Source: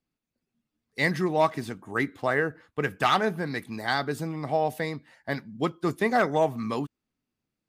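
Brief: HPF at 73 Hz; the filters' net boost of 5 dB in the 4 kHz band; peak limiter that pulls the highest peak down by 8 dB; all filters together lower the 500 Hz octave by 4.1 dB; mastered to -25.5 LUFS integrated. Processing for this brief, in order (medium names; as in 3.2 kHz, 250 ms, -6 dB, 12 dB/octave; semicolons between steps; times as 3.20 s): high-pass 73 Hz; peaking EQ 500 Hz -5.5 dB; peaking EQ 4 kHz +6 dB; trim +5 dB; peak limiter -11.5 dBFS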